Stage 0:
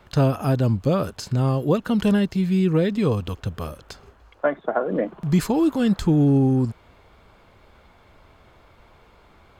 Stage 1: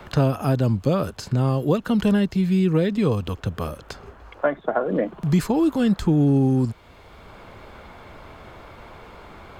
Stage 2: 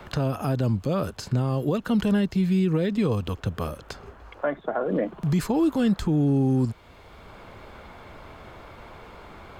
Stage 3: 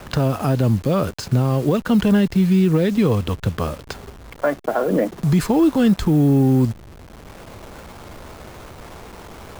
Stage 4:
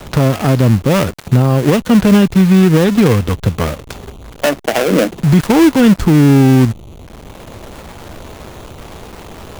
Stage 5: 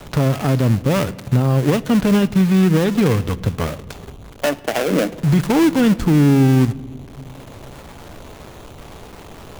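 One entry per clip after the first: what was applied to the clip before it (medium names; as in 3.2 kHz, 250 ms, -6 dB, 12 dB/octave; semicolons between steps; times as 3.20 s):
three bands compressed up and down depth 40%
peak limiter -13.5 dBFS, peak gain reduction 6.5 dB; trim -1.5 dB
send-on-delta sampling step -41 dBFS; trim +6.5 dB
dead-time distortion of 0.29 ms; trim +7 dB
simulated room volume 3100 m³, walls mixed, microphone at 0.31 m; trim -5.5 dB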